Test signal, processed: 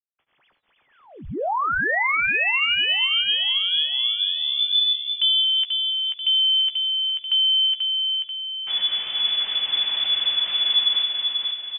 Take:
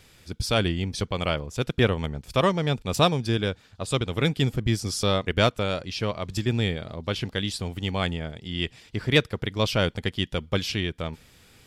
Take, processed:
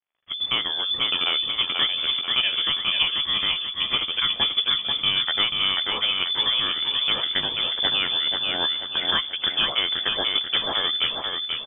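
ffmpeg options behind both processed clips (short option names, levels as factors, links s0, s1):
-filter_complex "[0:a]agate=range=0.398:threshold=0.00501:ratio=16:detection=peak,bandreject=f=50:t=h:w=6,bandreject=f=100:t=h:w=6,bandreject=f=150:t=h:w=6,bandreject=f=200:t=h:w=6,bandreject=f=250:t=h:w=6,bandreject=f=300:t=h:w=6,bandreject=f=350:t=h:w=6,bandreject=f=400:t=h:w=6,asubboost=boost=6:cutoff=51,acompressor=threshold=0.0447:ratio=6,afreqshift=-86,aeval=exprs='sgn(val(0))*max(abs(val(0))-0.00168,0)':c=same,asplit=2[s0][s1];[s1]adelay=14,volume=0.316[s2];[s0][s2]amix=inputs=2:normalize=0,aecho=1:1:487|974|1461|1948|2435|2922:0.631|0.284|0.128|0.0575|0.0259|0.0116,lowpass=f=3000:t=q:w=0.5098,lowpass=f=3000:t=q:w=0.6013,lowpass=f=3000:t=q:w=0.9,lowpass=f=3000:t=q:w=2.563,afreqshift=-3500,volume=2.24"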